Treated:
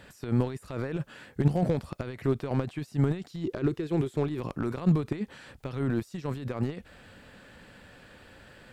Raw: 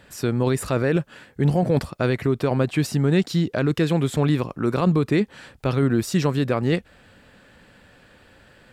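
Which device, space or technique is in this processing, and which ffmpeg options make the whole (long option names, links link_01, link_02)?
de-esser from a sidechain: -filter_complex "[0:a]asettb=1/sr,asplit=3[link_01][link_02][link_03];[link_01]atrim=end=3.444[link_04];[link_02]atrim=start=3.44:end=4.4,asetpts=PTS-STARTPTS,afade=type=in:duration=0.004:curve=qsin,afade=type=out:start_time=0.956:duration=0.004:curve=qsin,equalizer=frequency=370:width_type=o:width=0.41:gain=12[link_05];[link_03]atrim=start=4.396[link_06];[link_04][link_05]acrossfade=duration=0.004:curve1=hsin:curve2=qsin[link_07];[link_07][link_06]acrossfade=duration=0.004:curve1=qsin:curve2=hsin,asplit=2[link_08][link_09];[link_09]highpass=4000,apad=whole_len=384742[link_10];[link_08][link_10]sidechaincompress=threshold=-54dB:ratio=12:attack=1.7:release=30"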